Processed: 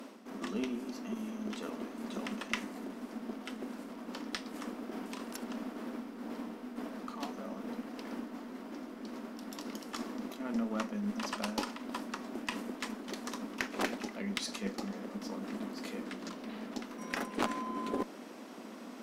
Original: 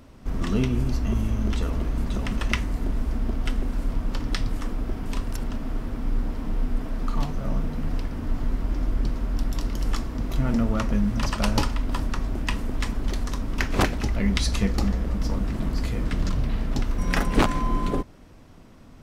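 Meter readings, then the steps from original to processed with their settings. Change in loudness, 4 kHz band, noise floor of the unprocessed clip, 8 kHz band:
-12.0 dB, -8.5 dB, -47 dBFS, -8.5 dB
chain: reverse; compression 8:1, threshold -35 dBFS, peak gain reduction 21.5 dB; reverse; elliptic high-pass 210 Hz, stop band 40 dB; Chebyshev shaper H 3 -17 dB, 4 -27 dB, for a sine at -23.5 dBFS; trim +11 dB

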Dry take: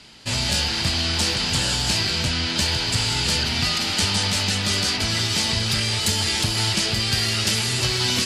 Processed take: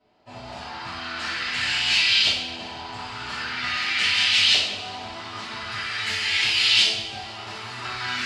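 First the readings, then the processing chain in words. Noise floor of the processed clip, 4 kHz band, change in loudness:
-39 dBFS, -1.0 dB, -0.5 dB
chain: pre-emphasis filter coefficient 0.97; LFO low-pass saw up 0.44 Hz 590–3300 Hz; two-slope reverb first 0.66 s, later 2.7 s, from -18 dB, DRR -9.5 dB; trim +1 dB

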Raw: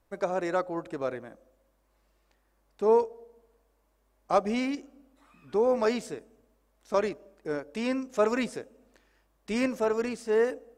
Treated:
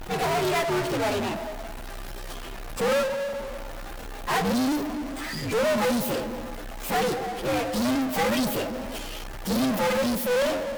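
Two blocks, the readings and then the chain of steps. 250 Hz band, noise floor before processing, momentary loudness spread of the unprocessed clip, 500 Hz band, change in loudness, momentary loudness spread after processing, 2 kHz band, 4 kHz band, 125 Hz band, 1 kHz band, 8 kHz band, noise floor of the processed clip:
+6.0 dB, -70 dBFS, 11 LU, +1.5 dB, +2.5 dB, 14 LU, +8.0 dB, +13.0 dB, +12.5 dB, +5.5 dB, +13.0 dB, -36 dBFS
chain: frequency axis rescaled in octaves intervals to 128%; power-law waveshaper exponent 0.35; one-sided clip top -28 dBFS

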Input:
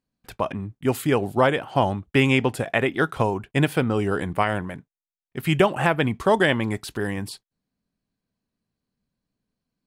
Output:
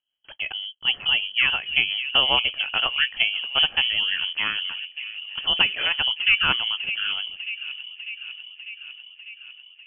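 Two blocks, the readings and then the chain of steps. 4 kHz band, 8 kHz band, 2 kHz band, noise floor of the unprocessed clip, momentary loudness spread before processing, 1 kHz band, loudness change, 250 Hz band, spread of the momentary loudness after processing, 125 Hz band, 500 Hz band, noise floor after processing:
+15.5 dB, under -40 dB, +4.0 dB, under -85 dBFS, 10 LU, -7.0 dB, +1.5 dB, -22.0 dB, 18 LU, -21.5 dB, -17.5 dB, -52 dBFS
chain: rotary cabinet horn 5.5 Hz; feedback echo behind a band-pass 598 ms, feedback 69%, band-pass 430 Hz, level -9 dB; frequency inversion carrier 3.2 kHz

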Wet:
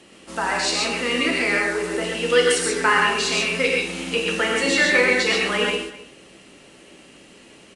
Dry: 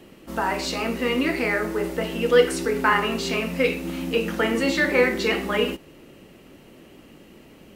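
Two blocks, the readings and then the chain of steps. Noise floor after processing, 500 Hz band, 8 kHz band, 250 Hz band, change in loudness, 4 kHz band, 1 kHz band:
-49 dBFS, 0.0 dB, +10.0 dB, -2.0 dB, +3.0 dB, +7.0 dB, +2.0 dB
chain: tilt EQ +2.5 dB/octave; on a send: delay 258 ms -18.5 dB; on the sum: gated-style reverb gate 160 ms rising, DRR 0.5 dB; resampled via 22.05 kHz

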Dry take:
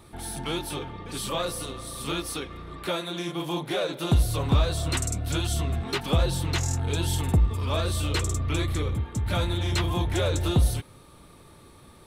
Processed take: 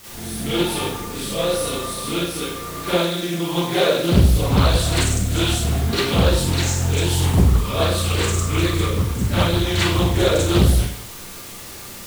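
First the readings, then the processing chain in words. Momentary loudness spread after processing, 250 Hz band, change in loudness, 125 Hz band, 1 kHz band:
11 LU, +9.5 dB, +8.0 dB, +7.0 dB, +7.5 dB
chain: rotary cabinet horn 1 Hz, later 7 Hz, at 5.13 s; in parallel at -7.5 dB: word length cut 6-bit, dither triangular; on the sum: Schroeder reverb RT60 0.6 s, combs from 32 ms, DRR -9.5 dB; loudspeaker Doppler distortion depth 0.79 ms; trim -2 dB

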